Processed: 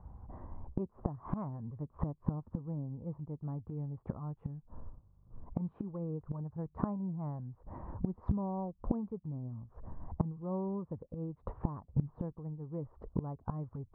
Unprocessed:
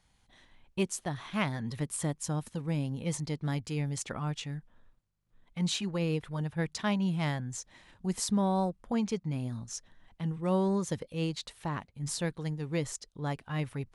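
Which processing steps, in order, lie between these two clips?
Chebyshev low-pass filter 1,100 Hz, order 4
parametric band 71 Hz +12 dB 1.4 octaves
gate with flip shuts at −33 dBFS, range −24 dB
level +14.5 dB

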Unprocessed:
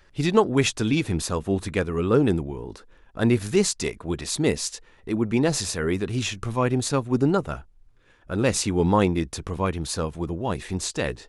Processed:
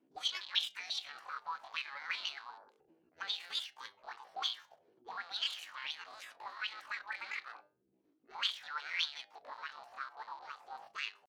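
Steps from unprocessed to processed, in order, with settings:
loose part that buzzes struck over −34 dBFS, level −28 dBFS
gate on every frequency bin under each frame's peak −15 dB weak
low-shelf EQ 220 Hz +6.5 dB
mains-hum notches 60/120/180/240/300/360/420/480 Hz
pitch shifter +9 semitones
envelope filter 290–3,300 Hz, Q 5.2, up, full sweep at −30 dBFS
flanger 0.33 Hz, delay 6.1 ms, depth 3.2 ms, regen +84%
level +9 dB

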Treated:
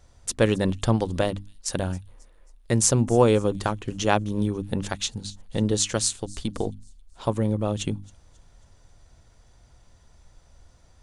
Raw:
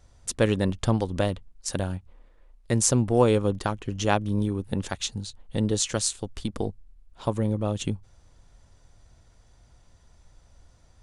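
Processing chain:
mains-hum notches 50/100/150/200/250/300 Hz
on a send: delay with a high-pass on its return 270 ms, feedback 42%, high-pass 4,900 Hz, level −20 dB
on the sum: level +2 dB

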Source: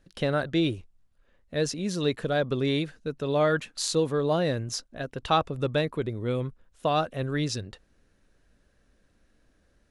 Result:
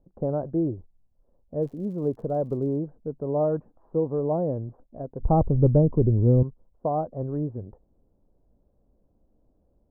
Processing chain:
Butterworth low-pass 910 Hz 36 dB per octave
0:01.61–0:02.75: surface crackle 150 per second → 54 per second −49 dBFS
0:05.20–0:06.43: spectral tilt −4.5 dB per octave

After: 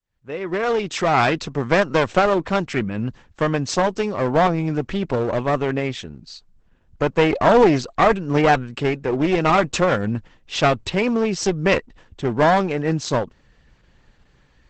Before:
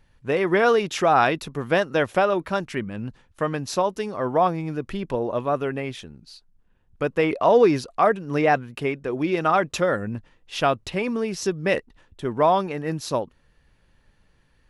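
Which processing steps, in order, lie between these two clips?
fade in at the beginning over 1.62 s
asymmetric clip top −27 dBFS, bottom −9 dBFS
level +7 dB
Opus 12 kbit/s 48,000 Hz

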